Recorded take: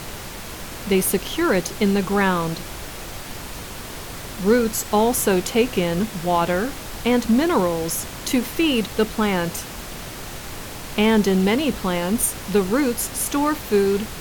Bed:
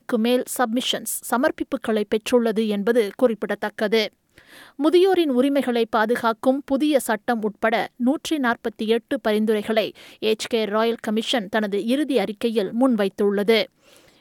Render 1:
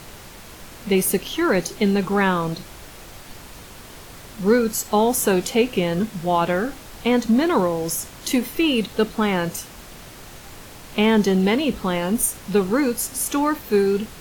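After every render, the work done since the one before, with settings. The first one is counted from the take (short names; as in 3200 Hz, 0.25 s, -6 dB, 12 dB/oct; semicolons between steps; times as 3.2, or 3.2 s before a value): noise print and reduce 7 dB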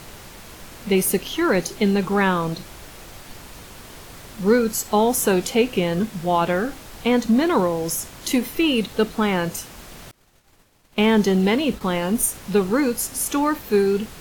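10.11–11.81 expander -29 dBFS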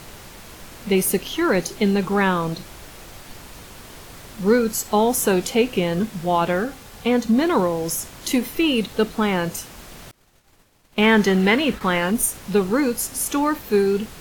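6.64–7.38 notch comb 320 Hz; 11.02–12.11 bell 1700 Hz +9 dB 1.3 oct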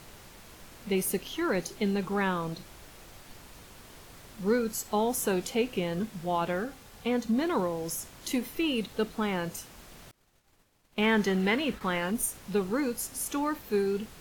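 gain -9.5 dB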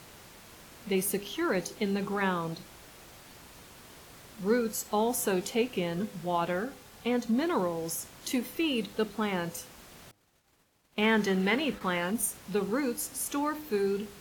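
HPF 79 Hz 6 dB/oct; de-hum 101.1 Hz, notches 9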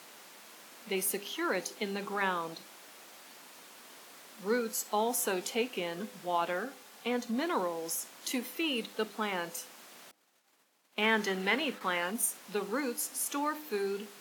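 HPF 240 Hz 24 dB/oct; bell 360 Hz -5 dB 1.2 oct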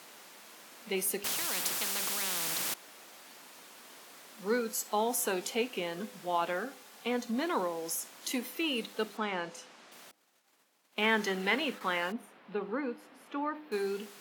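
1.24–2.74 spectral compressor 10:1; 9.17–9.92 air absorption 89 m; 12.12–13.72 air absorption 440 m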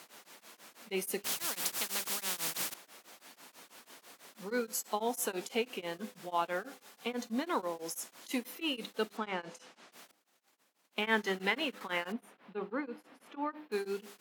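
beating tremolo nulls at 6.1 Hz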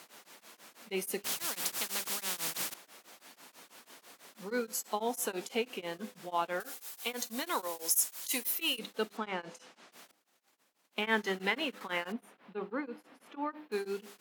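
6.6–8.79 RIAA curve recording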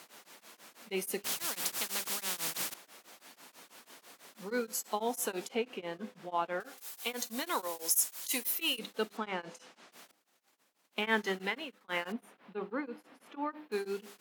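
5.48–6.78 LPF 2500 Hz 6 dB/oct; 11.3–11.88 fade out linear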